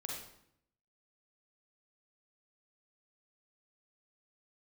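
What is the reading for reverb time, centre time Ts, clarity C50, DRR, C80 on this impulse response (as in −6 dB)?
0.70 s, 53 ms, 0.5 dB, −2.0 dB, 5.0 dB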